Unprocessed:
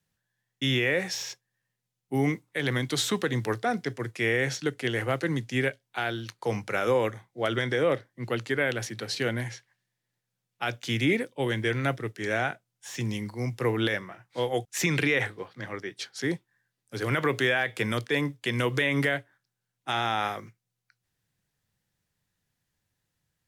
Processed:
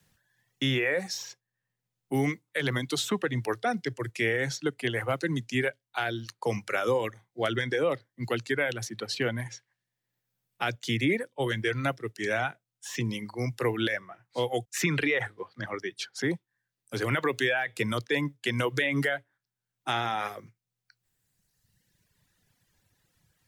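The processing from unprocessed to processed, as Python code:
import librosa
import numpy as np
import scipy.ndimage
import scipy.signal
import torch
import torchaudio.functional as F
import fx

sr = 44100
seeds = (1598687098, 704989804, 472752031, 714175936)

y = fx.dereverb_blind(x, sr, rt60_s=1.6)
y = fx.band_squash(y, sr, depth_pct=40)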